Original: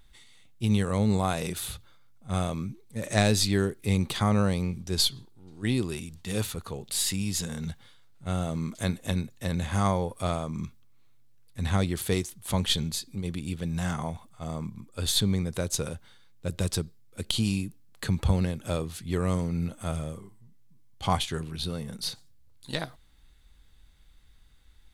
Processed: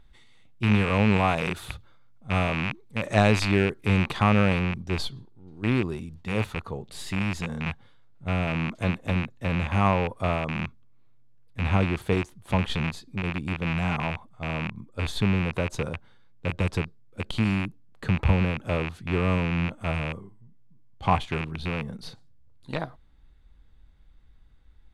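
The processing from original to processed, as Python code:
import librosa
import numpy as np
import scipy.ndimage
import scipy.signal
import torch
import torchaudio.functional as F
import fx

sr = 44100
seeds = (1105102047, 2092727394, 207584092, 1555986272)

y = fx.rattle_buzz(x, sr, strikes_db=-33.0, level_db=-15.0)
y = fx.lowpass(y, sr, hz=fx.steps((0.0, 1700.0), (4.59, 1000.0)), slope=6)
y = fx.dynamic_eq(y, sr, hz=1000.0, q=1.3, threshold_db=-47.0, ratio=4.0, max_db=5)
y = y * librosa.db_to_amplitude(2.5)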